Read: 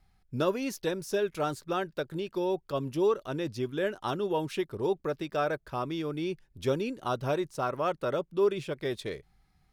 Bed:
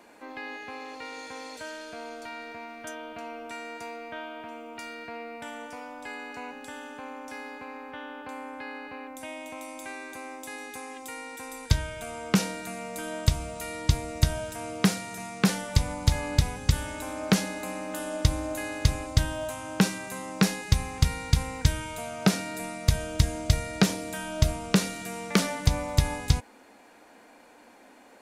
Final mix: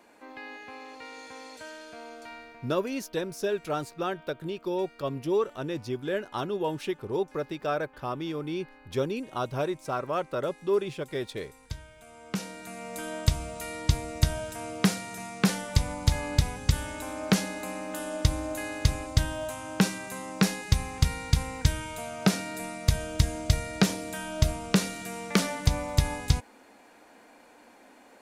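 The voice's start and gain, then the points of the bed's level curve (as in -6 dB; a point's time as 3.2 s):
2.30 s, 0.0 dB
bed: 2.32 s -4 dB
2.86 s -15 dB
11.97 s -15 dB
12.95 s -1 dB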